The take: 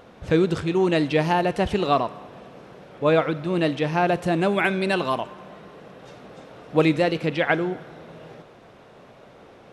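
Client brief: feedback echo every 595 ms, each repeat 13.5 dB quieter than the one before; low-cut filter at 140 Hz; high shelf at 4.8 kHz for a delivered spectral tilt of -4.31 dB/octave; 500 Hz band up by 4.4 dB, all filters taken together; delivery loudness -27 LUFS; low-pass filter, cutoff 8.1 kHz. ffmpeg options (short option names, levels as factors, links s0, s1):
-af "highpass=140,lowpass=8100,equalizer=f=500:t=o:g=5.5,highshelf=f=4800:g=8.5,aecho=1:1:595|1190:0.211|0.0444,volume=0.422"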